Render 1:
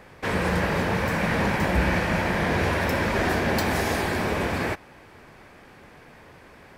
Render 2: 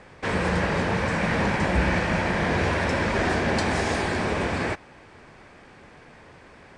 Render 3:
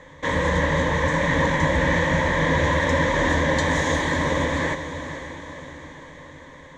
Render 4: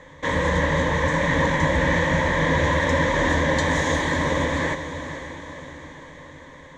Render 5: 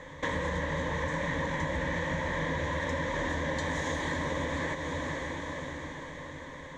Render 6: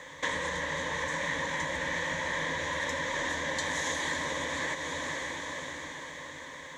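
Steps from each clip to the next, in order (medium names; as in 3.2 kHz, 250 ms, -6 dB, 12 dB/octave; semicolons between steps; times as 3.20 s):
steep low-pass 9.3 kHz 48 dB/octave
rippled EQ curve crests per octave 1.1, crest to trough 14 dB; on a send: echo that smears into a reverb 494 ms, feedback 53%, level -10 dB
no audible change
compression 5:1, threshold -30 dBFS, peak gain reduction 12.5 dB
tilt EQ +3 dB/octave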